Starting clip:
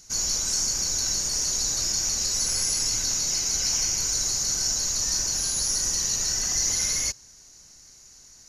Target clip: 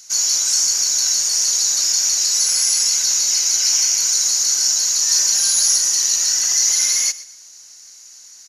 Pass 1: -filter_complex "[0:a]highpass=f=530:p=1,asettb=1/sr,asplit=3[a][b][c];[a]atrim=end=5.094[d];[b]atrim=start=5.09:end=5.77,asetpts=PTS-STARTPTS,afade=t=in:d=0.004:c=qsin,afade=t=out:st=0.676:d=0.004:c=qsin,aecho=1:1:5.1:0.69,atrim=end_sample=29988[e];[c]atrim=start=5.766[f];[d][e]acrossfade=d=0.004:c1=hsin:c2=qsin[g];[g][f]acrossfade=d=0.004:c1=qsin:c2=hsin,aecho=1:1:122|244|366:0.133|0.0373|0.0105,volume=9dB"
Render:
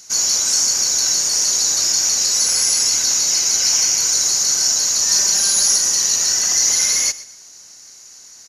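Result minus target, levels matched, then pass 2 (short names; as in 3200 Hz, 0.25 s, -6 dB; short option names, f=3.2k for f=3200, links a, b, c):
500 Hz band +8.5 dB
-filter_complex "[0:a]highpass=f=2k:p=1,asettb=1/sr,asplit=3[a][b][c];[a]atrim=end=5.094[d];[b]atrim=start=5.09:end=5.77,asetpts=PTS-STARTPTS,afade=t=in:d=0.004:c=qsin,afade=t=out:st=0.676:d=0.004:c=qsin,aecho=1:1:5.1:0.69,atrim=end_sample=29988[e];[c]atrim=start=5.766[f];[d][e]acrossfade=d=0.004:c1=hsin:c2=qsin[g];[g][f]acrossfade=d=0.004:c1=qsin:c2=hsin,aecho=1:1:122|244|366:0.133|0.0373|0.0105,volume=9dB"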